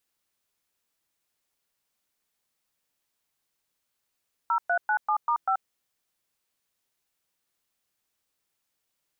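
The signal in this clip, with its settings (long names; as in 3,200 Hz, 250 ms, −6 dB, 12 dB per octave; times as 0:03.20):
touch tones "0397*5", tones 82 ms, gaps 113 ms, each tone −24 dBFS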